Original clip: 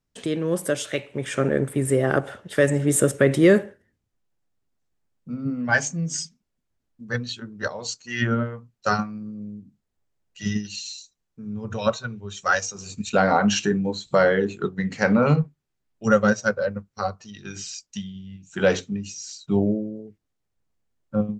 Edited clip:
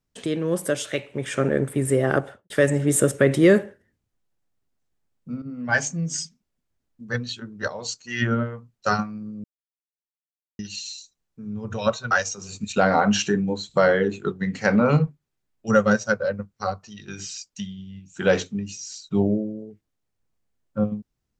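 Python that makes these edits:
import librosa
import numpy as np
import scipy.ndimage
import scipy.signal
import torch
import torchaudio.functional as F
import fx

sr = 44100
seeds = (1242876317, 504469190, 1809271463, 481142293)

y = fx.studio_fade_out(x, sr, start_s=2.16, length_s=0.34)
y = fx.edit(y, sr, fx.fade_in_from(start_s=5.42, length_s=0.39, floor_db=-12.0),
    fx.silence(start_s=9.44, length_s=1.15),
    fx.cut(start_s=12.11, length_s=0.37), tone=tone)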